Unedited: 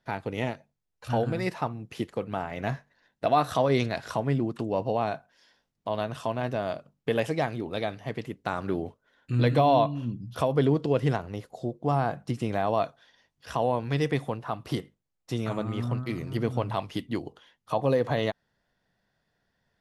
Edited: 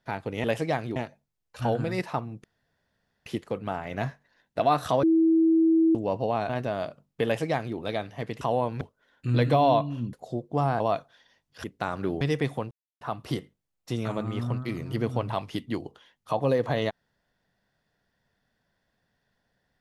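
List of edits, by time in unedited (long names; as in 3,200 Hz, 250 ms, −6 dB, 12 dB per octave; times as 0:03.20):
0:01.92: splice in room tone 0.82 s
0:03.69–0:04.61: beep over 325 Hz −17 dBFS
0:05.15–0:06.37: remove
0:07.13–0:07.65: duplicate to 0:00.44
0:08.29–0:08.86: swap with 0:13.52–0:13.92
0:10.18–0:11.44: remove
0:12.11–0:12.68: remove
0:14.42: splice in silence 0.30 s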